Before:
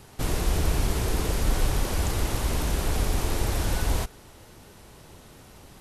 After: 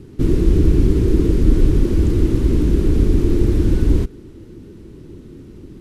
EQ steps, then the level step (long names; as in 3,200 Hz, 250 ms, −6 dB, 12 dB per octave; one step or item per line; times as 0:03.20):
low-pass filter 3,800 Hz 6 dB per octave
low shelf with overshoot 490 Hz +13 dB, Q 3
−2.5 dB